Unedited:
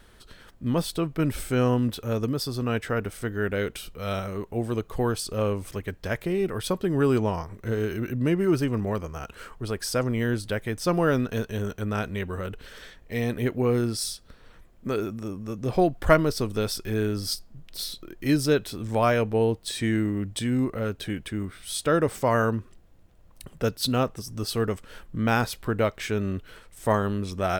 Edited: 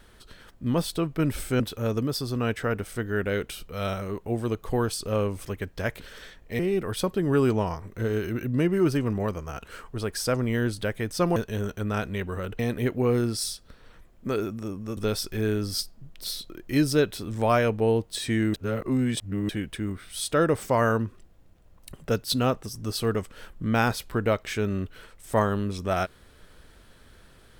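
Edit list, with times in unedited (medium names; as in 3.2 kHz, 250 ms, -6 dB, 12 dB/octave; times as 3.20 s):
1.60–1.86 s: delete
11.03–11.37 s: delete
12.60–13.19 s: move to 6.26 s
15.57–16.50 s: delete
20.07–21.02 s: reverse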